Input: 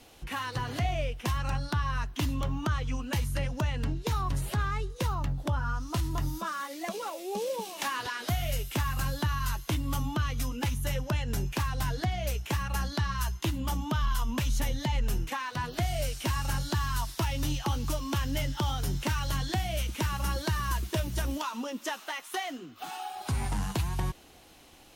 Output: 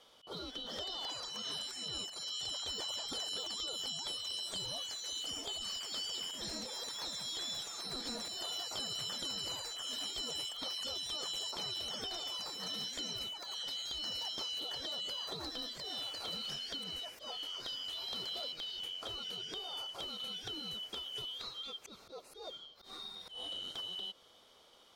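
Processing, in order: four frequency bands reordered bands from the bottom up 2413; treble shelf 11 kHz -12 dB; peak limiter -22.5 dBFS, peak gain reduction 5.5 dB; peaking EQ 500 Hz +11 dB 1.7 oct; compression, threshold -31 dBFS, peak gain reduction 6 dB; slow attack 124 ms; ever faster or slower copies 459 ms, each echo +5 st, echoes 3; trim -8.5 dB

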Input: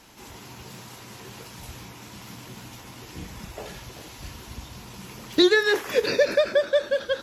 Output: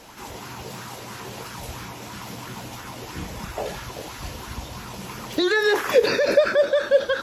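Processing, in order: peak limiter -18.5 dBFS, peak gain reduction 11 dB; sweeping bell 3 Hz 500–1500 Hz +9 dB; trim +4.5 dB

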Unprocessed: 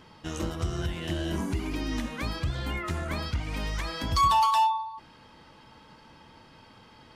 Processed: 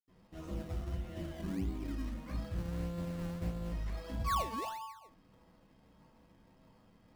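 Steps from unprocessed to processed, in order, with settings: 2.47–3.64 s: sorted samples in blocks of 256 samples; reverberation RT60 0.35 s, pre-delay 76 ms; in parallel at -3 dB: decimation with a swept rate 22×, swing 100% 1.6 Hz; on the sum: trim -7 dB

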